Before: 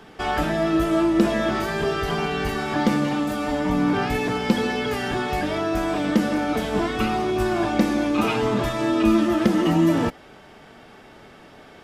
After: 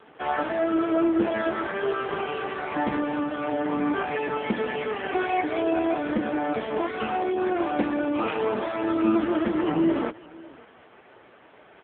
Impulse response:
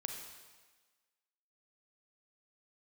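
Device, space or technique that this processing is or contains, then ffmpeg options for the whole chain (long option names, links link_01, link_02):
satellite phone: -filter_complex "[0:a]asettb=1/sr,asplit=3[link_01][link_02][link_03];[link_01]atrim=end=5.094[link_04];[link_02]atrim=start=5.09:end=5.95,asetpts=PTS-STARTPTS,afade=type=in:duration=0.004:curve=qsin,afade=type=out:start_time=0.856:duration=0.004:curve=qsin,aecho=1:1:2.7:0.68,atrim=end_sample=37926[link_05];[link_03]atrim=start=5.946[link_06];[link_04][link_05]acrossfade=duration=0.004:curve1=hsin:curve2=qsin[link_07];[link_07][link_06]acrossfade=duration=0.004:curve1=qsin:curve2=hsin,highpass=310,lowpass=3300,aecho=1:1:553:0.075" -ar 8000 -c:a libopencore_amrnb -b:a 5900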